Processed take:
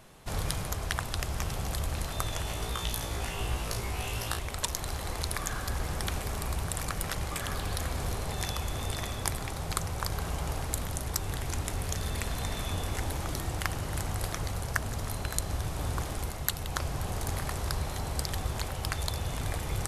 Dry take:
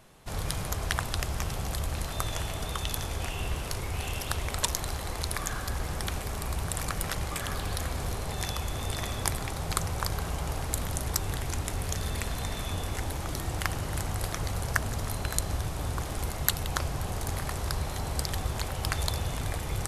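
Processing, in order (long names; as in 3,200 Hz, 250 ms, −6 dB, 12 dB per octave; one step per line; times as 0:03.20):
0:02.44–0:04.39: flutter between parallel walls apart 3 metres, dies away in 0.28 s
speech leveller within 4 dB 0.5 s
level −1.5 dB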